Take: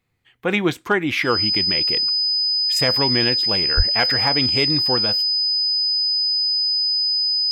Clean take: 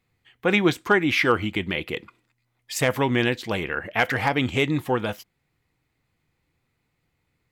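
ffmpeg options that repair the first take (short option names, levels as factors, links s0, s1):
-filter_complex "[0:a]bandreject=f=5000:w=30,asplit=3[s0][s1][s2];[s0]afade=t=out:st=3.76:d=0.02[s3];[s1]highpass=f=140:w=0.5412,highpass=f=140:w=1.3066,afade=t=in:st=3.76:d=0.02,afade=t=out:st=3.88:d=0.02[s4];[s2]afade=t=in:st=3.88:d=0.02[s5];[s3][s4][s5]amix=inputs=3:normalize=0"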